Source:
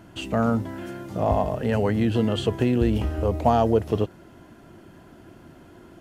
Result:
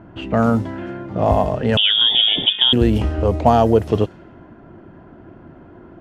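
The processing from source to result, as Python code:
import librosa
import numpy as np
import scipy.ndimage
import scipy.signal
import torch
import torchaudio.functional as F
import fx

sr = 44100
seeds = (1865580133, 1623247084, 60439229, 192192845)

y = fx.env_lowpass(x, sr, base_hz=1400.0, full_db=-16.5)
y = fx.freq_invert(y, sr, carrier_hz=3500, at=(1.77, 2.73))
y = F.gain(torch.from_numpy(y), 6.0).numpy()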